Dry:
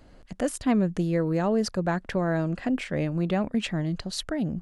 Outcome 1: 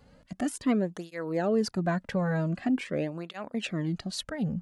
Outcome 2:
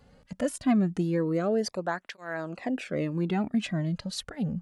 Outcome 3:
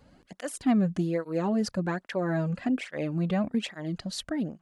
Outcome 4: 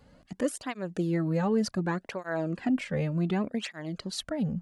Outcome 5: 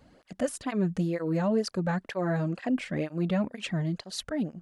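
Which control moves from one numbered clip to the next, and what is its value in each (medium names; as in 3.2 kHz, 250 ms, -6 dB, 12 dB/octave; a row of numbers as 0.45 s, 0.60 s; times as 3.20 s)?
cancelling through-zero flanger, nulls at: 0.45 Hz, 0.23 Hz, 1.2 Hz, 0.67 Hz, 2.1 Hz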